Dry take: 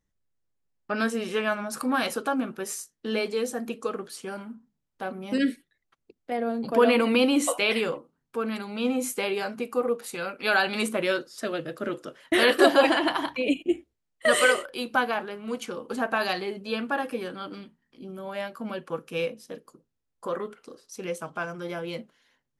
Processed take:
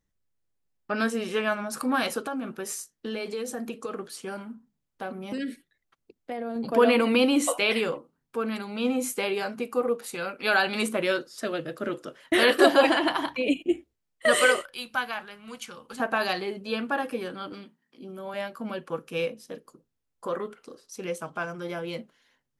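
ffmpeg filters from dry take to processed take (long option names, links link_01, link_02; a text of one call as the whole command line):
ffmpeg -i in.wav -filter_complex "[0:a]asettb=1/sr,asplit=3[link_01][link_02][link_03];[link_01]atrim=end=2.264[link_04];[link_02]atrim=start=2.26:end=6.56,asetpts=PTS-STARTPTS,afade=type=in:duration=0.004:curve=qsin,afade=type=out:start_time=4.296:duration=0.004:curve=qsin,acompressor=threshold=-28dB:ratio=6:attack=3.2:release=140:knee=1:detection=peak[link_05];[link_03]atrim=start=6.556[link_06];[link_04][link_05]acrossfade=duration=0.004:curve1=hsin:curve2=qsin[link_07];[link_07][link_06]acrossfade=duration=0.004:curve1=qsin:curve2=hsin,asettb=1/sr,asplit=3[link_08][link_09][link_10];[link_08]atrim=end=14.614[link_11];[link_09]atrim=start=14.61:end=16,asetpts=PTS-STARTPTS,afade=type=in:duration=0.004:curve=qsin,afade=type=out:start_time=1.386:duration=0.004:curve=qsin,equalizer=frequency=370:width_type=o:width=2.1:gain=-14.5[link_12];[link_10]atrim=start=15.996[link_13];[link_11][link_12]acrossfade=duration=0.004:curve1=hsin:curve2=qsin[link_14];[link_14][link_13]acrossfade=duration=0.004:curve1=qsin:curve2=hsin,asettb=1/sr,asplit=3[link_15][link_16][link_17];[link_15]atrim=end=17.524[link_18];[link_16]atrim=start=17.52:end=18.34,asetpts=PTS-STARTPTS,afade=type=in:duration=0.004:curve=qsin,afade=type=out:start_time=0.816:duration=0.004:curve=qsin,highpass=180[link_19];[link_17]atrim=start=18.336[link_20];[link_18][link_19]acrossfade=duration=0.004:curve1=hsin:curve2=qsin[link_21];[link_21][link_20]acrossfade=duration=0.004:curve1=qsin:curve2=hsin" out.wav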